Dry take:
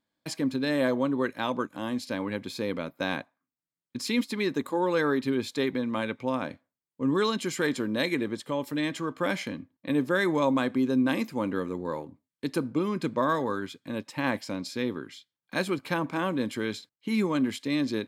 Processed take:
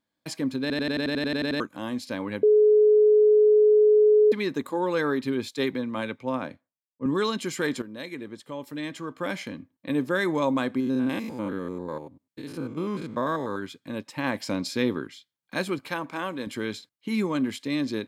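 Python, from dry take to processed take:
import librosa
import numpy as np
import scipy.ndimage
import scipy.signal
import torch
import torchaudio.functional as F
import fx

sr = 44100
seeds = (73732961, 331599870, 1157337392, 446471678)

y = fx.band_widen(x, sr, depth_pct=70, at=(5.49, 7.06))
y = fx.spec_steps(y, sr, hold_ms=100, at=(10.8, 13.56))
y = fx.low_shelf(y, sr, hz=350.0, db=-9.5, at=(15.88, 16.47))
y = fx.edit(y, sr, fx.stutter_over(start_s=0.61, slice_s=0.09, count=11),
    fx.bleep(start_s=2.43, length_s=1.89, hz=424.0, db=-14.0),
    fx.fade_in_from(start_s=7.82, length_s=2.13, floor_db=-12.0),
    fx.clip_gain(start_s=14.4, length_s=0.67, db=5.0), tone=tone)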